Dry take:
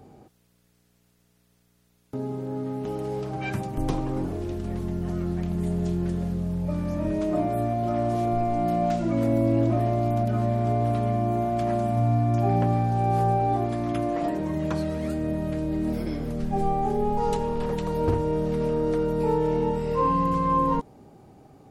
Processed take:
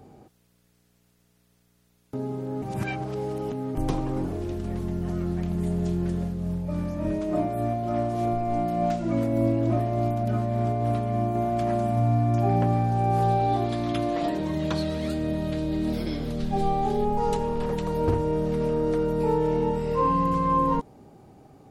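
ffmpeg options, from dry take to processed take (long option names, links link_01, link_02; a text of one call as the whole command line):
ffmpeg -i in.wav -filter_complex "[0:a]asettb=1/sr,asplit=3[link_01][link_02][link_03];[link_01]atrim=end=6.214[link_04];[link_02]atrim=start=6.21:end=11.35,asetpts=PTS-STARTPTS,afade=type=in:duration=0.004:curve=qsin,afade=type=out:start_time=5.136:duration=0.004:curve=qsin,tremolo=f=3.4:d=0.31[link_05];[link_03]atrim=start=11.346[link_06];[link_04][link_05]acrossfade=duration=0.004:curve1=hsin:curve2=qsin[link_07];[link_07][link_06]acrossfade=duration=0.004:curve1=qsin:curve2=hsin,asettb=1/sr,asplit=3[link_08][link_09][link_10];[link_08]atrim=end=13.224[link_11];[link_09]atrim=start=13.22:end=17.05,asetpts=PTS-STARTPTS,afade=type=in:duration=0.004:curve=qsin,afade=type=out:start_time=3.826:duration=0.004:curve=qsin,equalizer=frequency=3800:width_type=o:width=0.84:gain=11[link_12];[link_10]atrim=start=17.046[link_13];[link_11][link_12]acrossfade=duration=0.004:curve1=hsin:curve2=qsin[link_14];[link_14][link_13]acrossfade=duration=0.004:curve1=qsin:curve2=hsin,asplit=3[link_15][link_16][link_17];[link_15]atrim=end=2.622[link_18];[link_16]atrim=start=2.618:end=3.752,asetpts=PTS-STARTPTS,areverse[link_19];[link_17]atrim=start=3.748[link_20];[link_18][link_19]acrossfade=duration=0.004:curve1=hsin:curve2=hsin[link_21];[link_21][link_20]acrossfade=duration=0.004:curve1=hsin:curve2=hsin" out.wav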